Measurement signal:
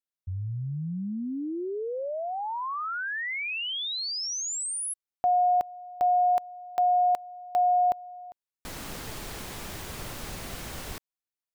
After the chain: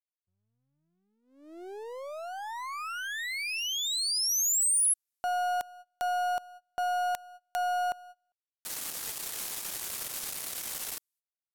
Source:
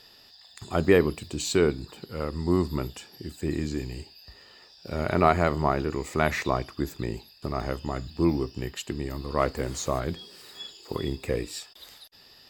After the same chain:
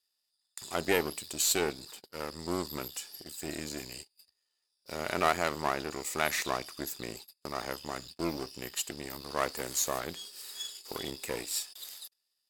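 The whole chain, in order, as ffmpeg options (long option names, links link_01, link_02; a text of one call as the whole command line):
ffmpeg -i in.wav -filter_complex "[0:a]aeval=exprs='if(lt(val(0),0),0.251*val(0),val(0))':channel_layout=same,aemphasis=mode=production:type=riaa,agate=range=-30dB:threshold=-38dB:ratio=16:release=249:detection=rms,lowpass=12000,asplit=2[link_01][link_02];[link_02]asoftclip=type=tanh:threshold=-21.5dB,volume=-9.5dB[link_03];[link_01][link_03]amix=inputs=2:normalize=0,volume=-4.5dB" out.wav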